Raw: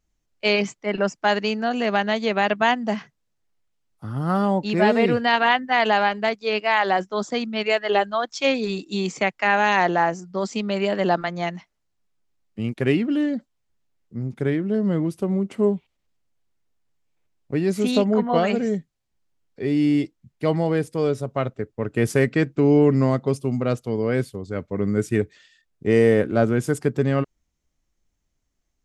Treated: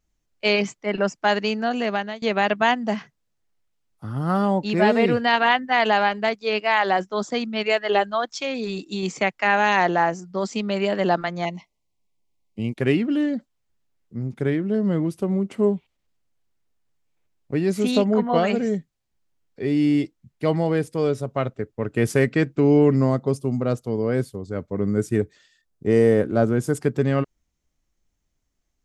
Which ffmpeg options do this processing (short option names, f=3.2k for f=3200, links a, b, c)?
-filter_complex "[0:a]asettb=1/sr,asplit=3[a][b][c];[a]atrim=end=8.414[d];[b]atrim=start=8.41:end=9.03,asetpts=PTS-STARTPTS,afade=t=in:d=0.004:c=qsin,afade=t=out:st=0.616:d=0.004:c=qsin,acompressor=threshold=-24dB:ratio=3:attack=3.2:release=140:knee=1:detection=peak[e];[c]atrim=start=9.026[f];[d][e]acrossfade=d=0.004:c1=hsin:c2=qsin[g];[g][f]acrossfade=d=0.004:c1=qsin:c2=hsin,asettb=1/sr,asplit=3[h][i][j];[h]atrim=end=11.454[k];[i]atrim=start=11.45:end=12.78,asetpts=PTS-STARTPTS,afade=t=in:d=0.004:c=qsin,afade=t=out:st=1.326:d=0.004:c=qsin,asuperstop=centerf=1500:order=12:qfactor=1.8[l];[j]atrim=start=12.776[m];[k][l]acrossfade=d=0.004:c1=hsin:c2=qsin[n];[n][m]acrossfade=d=0.004:c1=qsin:c2=hsin,asettb=1/sr,asplit=3[o][p][q];[o]atrim=end=22.964[r];[p]atrim=start=22.96:end=26.75,asetpts=PTS-STARTPTS,afade=t=in:d=0.004:c=qsin,afade=t=out:st=3.786:d=0.004:c=qsin,equalizer=f=2.5k:t=o:w=1.3:g=-6.5[s];[q]atrim=start=26.746[t];[r][s]acrossfade=d=0.004:c1=hsin:c2=qsin[u];[u][t]acrossfade=d=0.004:c1=qsin:c2=hsin,asplit=2[v][w];[v]atrim=end=2.22,asetpts=PTS-STARTPTS,afade=t=out:st=1.63:d=0.59:c=qsin:silence=0.0944061[x];[w]atrim=start=2.22,asetpts=PTS-STARTPTS,afade=t=in:d=0.004:c=hsin:silence=0.0944061[y];[x][y]concat=n=2:v=0:a=1"